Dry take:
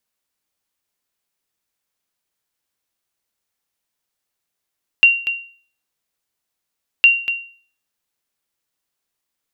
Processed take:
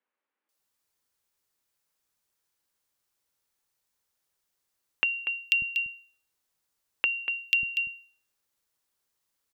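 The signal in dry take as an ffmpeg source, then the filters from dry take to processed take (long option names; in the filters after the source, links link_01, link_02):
-f lavfi -i "aevalsrc='0.708*(sin(2*PI*2760*mod(t,2.01))*exp(-6.91*mod(t,2.01)/0.45)+0.299*sin(2*PI*2760*max(mod(t,2.01)-0.24,0))*exp(-6.91*max(mod(t,2.01)-0.24,0)/0.45))':duration=4.02:sample_rate=44100"
-filter_complex "[0:a]bandreject=frequency=690:width=12,acompressor=threshold=-17dB:ratio=6,acrossover=split=230|2600[link_01][link_02][link_03];[link_03]adelay=490[link_04];[link_01]adelay=590[link_05];[link_05][link_02][link_04]amix=inputs=3:normalize=0"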